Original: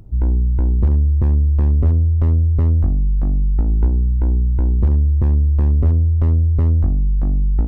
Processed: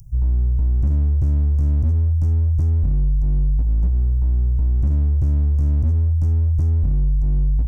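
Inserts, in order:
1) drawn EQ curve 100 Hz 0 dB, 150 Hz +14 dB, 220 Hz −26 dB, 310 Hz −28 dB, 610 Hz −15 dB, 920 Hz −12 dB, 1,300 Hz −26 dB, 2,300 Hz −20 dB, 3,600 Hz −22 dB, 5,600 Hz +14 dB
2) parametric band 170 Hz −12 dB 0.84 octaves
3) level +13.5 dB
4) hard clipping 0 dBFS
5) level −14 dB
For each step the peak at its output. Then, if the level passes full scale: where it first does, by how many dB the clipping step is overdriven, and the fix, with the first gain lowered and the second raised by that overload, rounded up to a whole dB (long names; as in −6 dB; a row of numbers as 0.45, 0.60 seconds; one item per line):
−5.5, −7.5, +6.0, 0.0, −14.0 dBFS
step 3, 6.0 dB
step 3 +7.5 dB, step 5 −8 dB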